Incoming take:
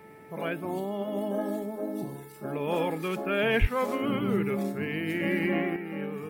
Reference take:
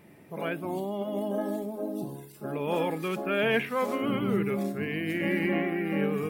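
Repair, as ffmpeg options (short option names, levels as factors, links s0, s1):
-filter_complex "[0:a]bandreject=f=437.5:t=h:w=4,bandreject=f=875:t=h:w=4,bandreject=f=1312.5:t=h:w=4,bandreject=f=1750:t=h:w=4,bandreject=f=2187.5:t=h:w=4,asplit=3[s0][s1][s2];[s0]afade=t=out:st=3.6:d=0.02[s3];[s1]highpass=f=140:w=0.5412,highpass=f=140:w=1.3066,afade=t=in:st=3.6:d=0.02,afade=t=out:st=3.72:d=0.02[s4];[s2]afade=t=in:st=3.72:d=0.02[s5];[s3][s4][s5]amix=inputs=3:normalize=0,asetnsamples=n=441:p=0,asendcmd='5.76 volume volume 7dB',volume=1"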